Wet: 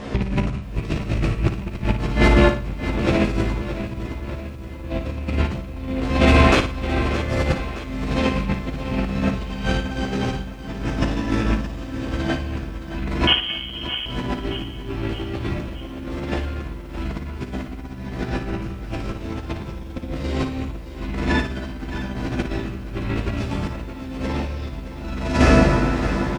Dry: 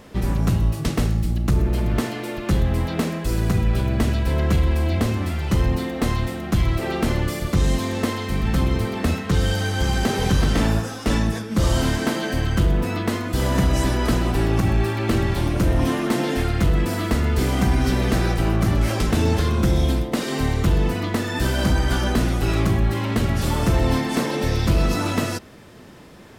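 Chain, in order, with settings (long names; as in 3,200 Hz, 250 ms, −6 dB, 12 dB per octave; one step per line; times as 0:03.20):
loose part that buzzes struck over −29 dBFS, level −23 dBFS
0:06.08–0:06.60: Butterworth high-pass 330 Hz 36 dB per octave
double-tracking delay 15 ms −2.5 dB
convolution reverb RT60 2.8 s, pre-delay 13 ms, DRR 0 dB
compressor whose output falls as the input rises −22 dBFS, ratio −0.5
high-frequency loss of the air 90 metres
0:13.27–0:14.06: voice inversion scrambler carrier 3,200 Hz
flutter between parallel walls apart 9.7 metres, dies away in 0.37 s
feedback echo at a low word length 619 ms, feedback 55%, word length 8 bits, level −12 dB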